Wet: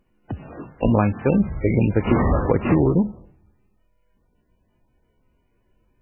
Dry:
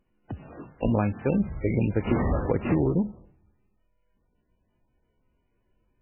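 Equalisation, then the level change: dynamic EQ 1100 Hz, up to +4 dB, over -48 dBFS, Q 3.4; +6.0 dB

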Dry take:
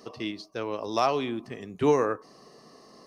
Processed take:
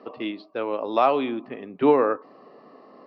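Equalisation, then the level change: dynamic EQ 3800 Hz, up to +7 dB, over -53 dBFS, Q 2.1; air absorption 430 m; speaker cabinet 230–5400 Hz, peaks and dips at 270 Hz +5 dB, 560 Hz +5 dB, 840 Hz +4 dB, 1300 Hz +4 dB, 2500 Hz +4 dB; +3.5 dB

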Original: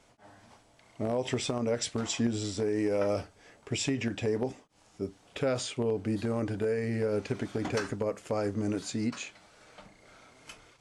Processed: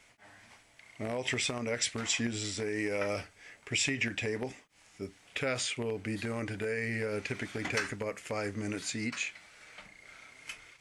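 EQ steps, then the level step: low shelf 140 Hz +3 dB; bell 2100 Hz +14 dB 1.1 oct; high shelf 4700 Hz +11.5 dB; -6.5 dB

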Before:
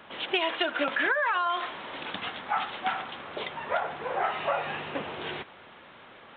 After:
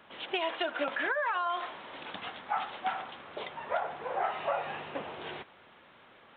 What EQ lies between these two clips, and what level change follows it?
dynamic EQ 710 Hz, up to +5 dB, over -41 dBFS, Q 1; -7.0 dB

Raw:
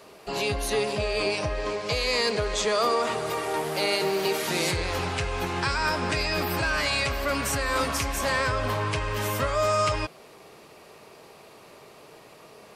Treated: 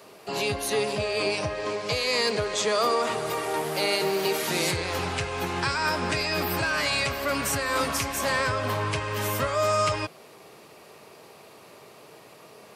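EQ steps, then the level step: HPF 81 Hz 24 dB/oct; high shelf 12000 Hz +5.5 dB; 0.0 dB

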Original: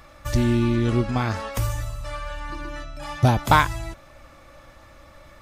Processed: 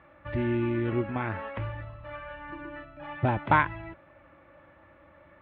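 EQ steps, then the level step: dynamic EQ 2300 Hz, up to +4 dB, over -42 dBFS, Q 1.7; air absorption 460 m; speaker cabinet 130–2900 Hz, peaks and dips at 130 Hz -8 dB, 230 Hz -8 dB, 460 Hz -6 dB, 720 Hz -6 dB, 1200 Hz -6 dB, 2300 Hz -3 dB; 0.0 dB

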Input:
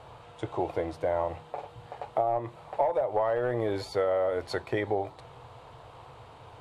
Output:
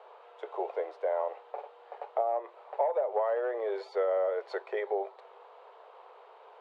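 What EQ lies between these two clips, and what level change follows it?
Chebyshev high-pass 390 Hz, order 6; tape spacing loss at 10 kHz 25 dB; 0.0 dB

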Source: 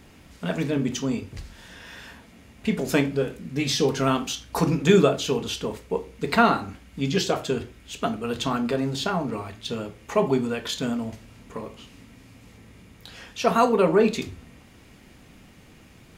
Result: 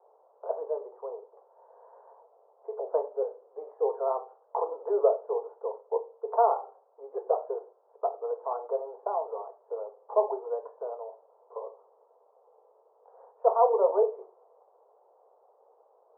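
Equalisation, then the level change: steep high-pass 440 Hz 72 dB/oct; steep low-pass 990 Hz 48 dB/oct; 0.0 dB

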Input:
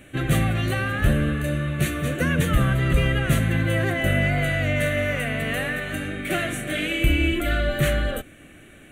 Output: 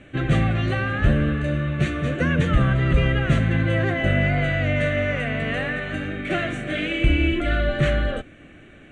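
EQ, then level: LPF 8400 Hz 24 dB/oct; air absorption 64 m; high shelf 4300 Hz -5.5 dB; +1.5 dB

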